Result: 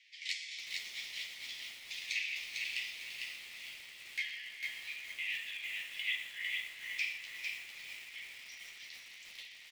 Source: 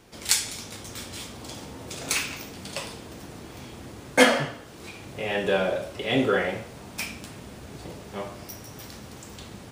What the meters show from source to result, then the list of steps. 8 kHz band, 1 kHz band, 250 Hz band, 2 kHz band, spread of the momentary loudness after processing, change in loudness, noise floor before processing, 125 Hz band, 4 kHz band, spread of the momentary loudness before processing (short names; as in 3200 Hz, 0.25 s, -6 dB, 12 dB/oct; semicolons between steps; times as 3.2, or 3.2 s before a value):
-18.5 dB, -32.0 dB, under -40 dB, -7.5 dB, 12 LU, -13.0 dB, -44 dBFS, under -35 dB, -7.5 dB, 19 LU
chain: compressor 20:1, threshold -28 dBFS, peak gain reduction 18.5 dB; high shelf 4100 Hz -7 dB; short-mantissa float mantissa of 4-bit; air absorption 180 m; on a send: diffused feedback echo 0.452 s, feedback 63%, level -10 dB; on the sum: one-sided clip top -26.5 dBFS; flange 0.54 Hz, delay 9.2 ms, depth 7.2 ms, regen -12%; steep high-pass 1900 Hz 96 dB/oct; echo 0.119 s -15.5 dB; lo-fi delay 0.451 s, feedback 35%, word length 10-bit, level -3 dB; gain +8 dB